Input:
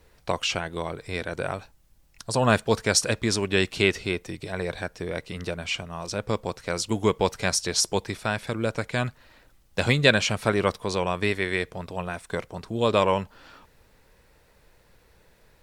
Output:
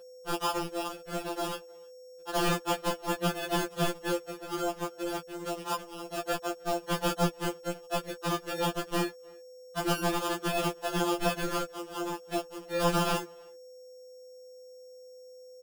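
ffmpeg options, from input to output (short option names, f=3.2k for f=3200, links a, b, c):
-filter_complex "[0:a]aemphasis=mode=production:type=cd,acrossover=split=210[a][b];[b]alimiter=limit=-11dB:level=0:latency=1:release=199[c];[a][c]amix=inputs=2:normalize=0,afreqshift=170,aresample=8000,aeval=exprs='sgn(val(0))*max(abs(val(0))-0.0119,0)':c=same,aresample=44100,aeval=exprs='val(0)+0.00398*sin(2*PI*1500*n/s)':c=same,acrusher=samples=22:mix=1:aa=0.000001,aeval=exprs='(mod(7.5*val(0)+1,2)-1)/7.5':c=same,asplit=2[d][e];[e]asetrate=52444,aresample=44100,atempo=0.840896,volume=-7dB[f];[d][f]amix=inputs=2:normalize=0,asplit=2[g][h];[h]adelay=310,highpass=300,lowpass=3.4k,asoftclip=type=hard:threshold=-24dB,volume=-25dB[i];[g][i]amix=inputs=2:normalize=0,afftfilt=real='re*2.83*eq(mod(b,8),0)':imag='im*2.83*eq(mod(b,8),0)':win_size=2048:overlap=0.75"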